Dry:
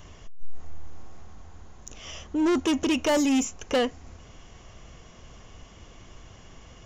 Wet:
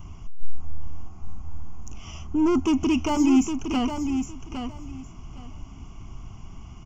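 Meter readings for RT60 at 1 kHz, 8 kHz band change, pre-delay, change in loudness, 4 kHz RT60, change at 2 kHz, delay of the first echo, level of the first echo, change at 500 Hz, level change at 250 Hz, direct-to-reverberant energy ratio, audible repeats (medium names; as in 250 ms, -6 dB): no reverb, -3.5 dB, no reverb, +1.0 dB, no reverb, -4.0 dB, 811 ms, -7.5 dB, -3.5 dB, +4.0 dB, no reverb, 2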